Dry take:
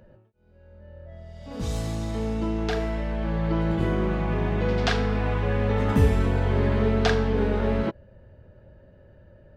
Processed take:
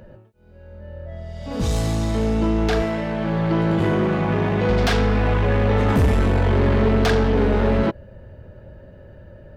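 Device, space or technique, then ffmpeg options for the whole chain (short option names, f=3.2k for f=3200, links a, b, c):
saturation between pre-emphasis and de-emphasis: -filter_complex "[0:a]highshelf=f=3k:g=10,asoftclip=type=tanh:threshold=-21.5dB,highshelf=f=3k:g=-10,asettb=1/sr,asplit=3[a][b][c];[a]atrim=end=2.824[d];[b]atrim=start=2.82:end=4.7,asetpts=PTS-STARTPTS,afade=t=in:d=0.004:c=qsin,afade=t=out:st=1.876:d=0.004:c=qsin,highpass=f=85:w=0.5412,highpass=f=85:w=1.3066[e];[c]atrim=start=4.696[f];[d][e]acrossfade=d=0.004:c1=hsin:c2=qsin[g];[g][f]acrossfade=d=0.004:c1=qsin:c2=hsin,volume=9dB"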